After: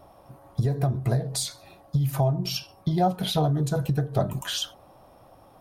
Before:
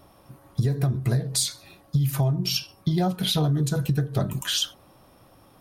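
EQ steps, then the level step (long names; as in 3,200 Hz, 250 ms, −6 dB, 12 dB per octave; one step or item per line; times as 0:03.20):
low-shelf EQ 140 Hz +6 dB
parametric band 710 Hz +11.5 dB 1.3 octaves
−5.0 dB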